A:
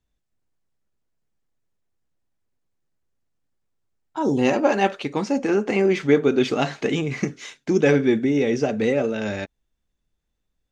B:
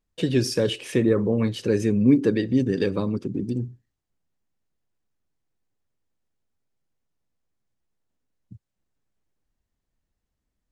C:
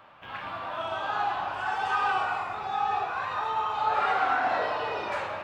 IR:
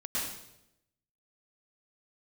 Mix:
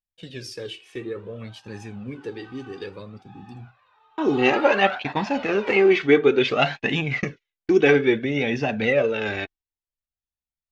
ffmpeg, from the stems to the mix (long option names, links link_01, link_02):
-filter_complex "[0:a]lowpass=3400,agate=range=-46dB:threshold=-31dB:ratio=16:detection=peak,volume=3dB,asplit=2[link_01][link_02];[1:a]flanger=delay=8.8:depth=8.2:regen=-63:speed=0.64:shape=sinusoidal,volume=-6dB[link_03];[2:a]adelay=550,volume=-6.5dB[link_04];[link_02]apad=whole_len=264108[link_05];[link_04][link_05]sidechaingate=range=-17dB:threshold=-26dB:ratio=16:detection=peak[link_06];[link_01][link_03][link_06]amix=inputs=3:normalize=0,flanger=delay=1.1:depth=1.6:regen=21:speed=0.58:shape=sinusoidal,agate=range=-7dB:threshold=-45dB:ratio=16:detection=peak,equalizer=frequency=3100:width_type=o:width=2.1:gain=8.5"